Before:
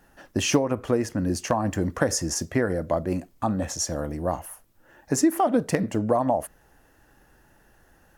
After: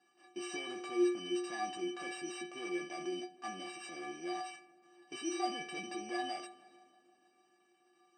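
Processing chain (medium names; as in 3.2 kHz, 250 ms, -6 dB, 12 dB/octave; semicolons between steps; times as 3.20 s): sorted samples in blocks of 16 samples; transient shaper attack -7 dB, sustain +8 dB; peak limiter -19.5 dBFS, peak gain reduction 9.5 dB; elliptic band-pass 180–5800 Hz, stop band 40 dB; inharmonic resonator 350 Hz, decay 0.48 s, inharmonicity 0.03; on a send: filtered feedback delay 156 ms, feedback 73%, low-pass 2.1 kHz, level -21 dB; on the sum: trim +9 dB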